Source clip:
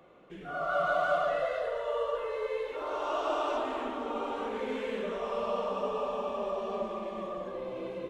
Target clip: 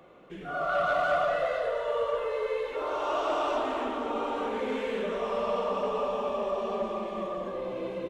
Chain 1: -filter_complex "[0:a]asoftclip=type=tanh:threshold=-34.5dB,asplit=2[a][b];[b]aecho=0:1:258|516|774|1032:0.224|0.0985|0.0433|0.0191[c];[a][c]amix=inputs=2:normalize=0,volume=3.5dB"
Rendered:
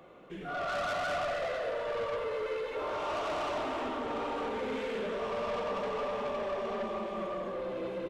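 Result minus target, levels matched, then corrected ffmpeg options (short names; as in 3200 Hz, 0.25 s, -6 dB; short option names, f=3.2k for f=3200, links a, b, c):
soft clip: distortion +12 dB
-filter_complex "[0:a]asoftclip=type=tanh:threshold=-22.5dB,asplit=2[a][b];[b]aecho=0:1:258|516|774|1032:0.224|0.0985|0.0433|0.0191[c];[a][c]amix=inputs=2:normalize=0,volume=3.5dB"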